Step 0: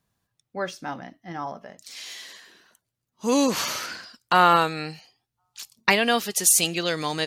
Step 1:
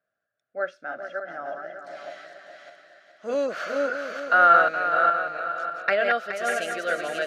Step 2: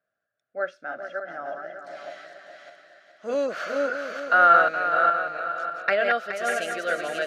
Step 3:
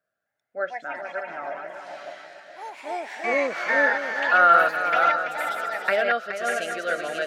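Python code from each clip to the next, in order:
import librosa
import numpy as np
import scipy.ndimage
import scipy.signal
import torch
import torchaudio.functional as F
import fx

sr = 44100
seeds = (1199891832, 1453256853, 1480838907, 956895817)

y1 = fx.reverse_delay_fb(x, sr, ms=300, feedback_pct=54, wet_db=-4)
y1 = fx.double_bandpass(y1, sr, hz=950.0, octaves=1.2)
y1 = fx.echo_feedback(y1, sr, ms=421, feedback_pct=31, wet_db=-9.5)
y1 = F.gain(torch.from_numpy(y1), 7.0).numpy()
y2 = y1
y3 = fx.echo_pitch(y2, sr, ms=260, semitones=4, count=2, db_per_echo=-6.0)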